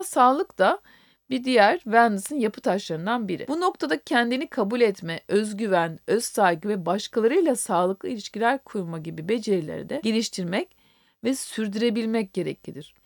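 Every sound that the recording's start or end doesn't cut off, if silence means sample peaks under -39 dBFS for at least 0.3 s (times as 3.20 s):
1.30–10.71 s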